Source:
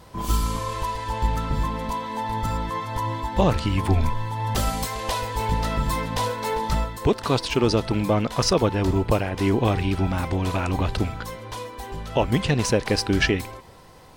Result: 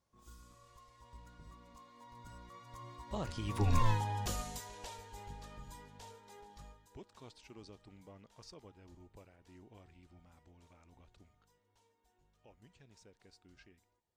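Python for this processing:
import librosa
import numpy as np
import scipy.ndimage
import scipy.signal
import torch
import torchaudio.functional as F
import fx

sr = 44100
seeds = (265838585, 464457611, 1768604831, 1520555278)

y = fx.doppler_pass(x, sr, speed_mps=26, closest_m=2.1, pass_at_s=3.88)
y = fx.peak_eq(y, sr, hz=6700.0, db=7.5, octaves=0.76)
y = F.gain(torch.from_numpy(y), -1.0).numpy()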